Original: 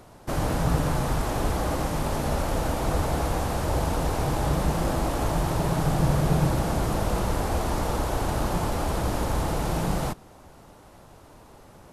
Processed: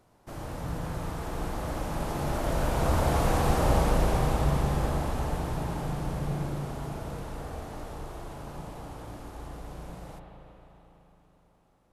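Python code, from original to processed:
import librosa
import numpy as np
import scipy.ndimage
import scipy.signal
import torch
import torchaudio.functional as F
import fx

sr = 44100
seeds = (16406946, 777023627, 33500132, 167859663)

y = fx.doppler_pass(x, sr, speed_mps=7, closest_m=4.8, pass_at_s=3.42)
y = fx.rev_spring(y, sr, rt60_s=3.8, pass_ms=(35, 41), chirp_ms=60, drr_db=1.0)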